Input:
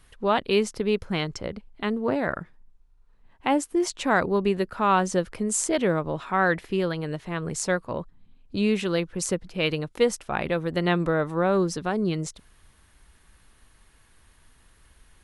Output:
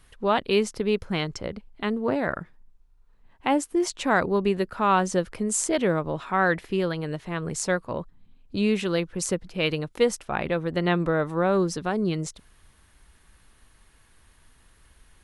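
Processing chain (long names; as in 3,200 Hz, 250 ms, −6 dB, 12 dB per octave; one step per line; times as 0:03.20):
0:10.25–0:11.14: high-shelf EQ 6,100 Hz −6.5 dB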